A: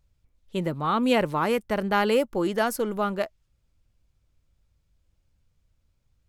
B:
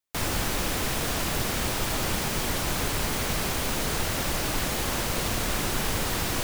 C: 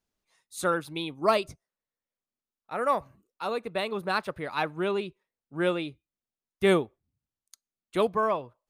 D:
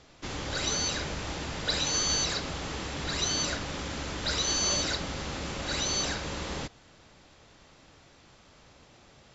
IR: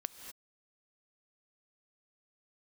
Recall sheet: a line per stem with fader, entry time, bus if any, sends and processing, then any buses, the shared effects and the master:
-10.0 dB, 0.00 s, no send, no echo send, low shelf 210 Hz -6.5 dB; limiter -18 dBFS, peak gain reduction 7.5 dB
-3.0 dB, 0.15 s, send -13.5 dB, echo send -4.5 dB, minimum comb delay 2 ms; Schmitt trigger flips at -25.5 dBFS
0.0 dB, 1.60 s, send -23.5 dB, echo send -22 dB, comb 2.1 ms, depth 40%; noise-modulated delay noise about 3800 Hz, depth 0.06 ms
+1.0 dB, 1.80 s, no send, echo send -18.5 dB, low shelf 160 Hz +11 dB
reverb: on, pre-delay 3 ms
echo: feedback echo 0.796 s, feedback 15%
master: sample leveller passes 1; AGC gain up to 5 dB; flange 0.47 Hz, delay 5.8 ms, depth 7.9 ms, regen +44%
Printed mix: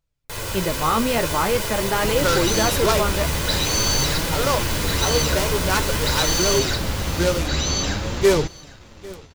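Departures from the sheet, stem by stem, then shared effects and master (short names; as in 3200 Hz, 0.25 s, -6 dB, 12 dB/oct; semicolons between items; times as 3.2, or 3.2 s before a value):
stem A -10.0 dB -> +1.5 dB; stem B: missing Schmitt trigger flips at -25.5 dBFS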